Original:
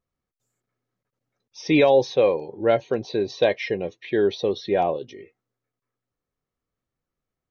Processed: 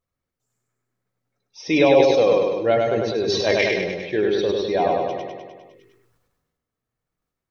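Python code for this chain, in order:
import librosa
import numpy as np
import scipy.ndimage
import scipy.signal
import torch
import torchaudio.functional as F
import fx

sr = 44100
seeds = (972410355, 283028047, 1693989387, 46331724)

y = fx.spec_quant(x, sr, step_db=15)
y = fx.hum_notches(y, sr, base_hz=50, count=8)
y = fx.transient(y, sr, attack_db=-12, sustain_db=12, at=(3.22, 3.64))
y = fx.echo_feedback(y, sr, ms=101, feedback_pct=56, wet_db=-3.0)
y = fx.sustainer(y, sr, db_per_s=38.0)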